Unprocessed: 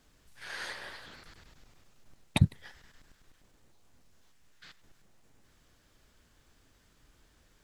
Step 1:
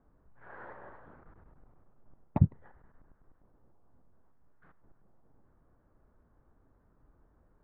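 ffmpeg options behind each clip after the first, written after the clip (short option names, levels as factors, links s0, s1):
-af "lowpass=f=1200:w=0.5412,lowpass=f=1200:w=1.3066"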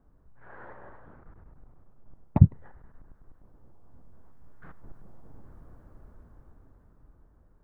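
-af "lowshelf=f=180:g=6.5,dynaudnorm=f=280:g=13:m=4.47"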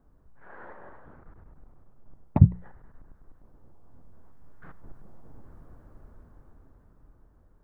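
-af "bandreject=f=60:t=h:w=6,bandreject=f=120:t=h:w=6,bandreject=f=180:t=h:w=6,volume=1.12"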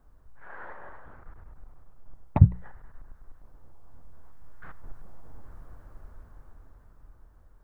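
-af "equalizer=f=240:t=o:w=2.8:g=-10,volume=2"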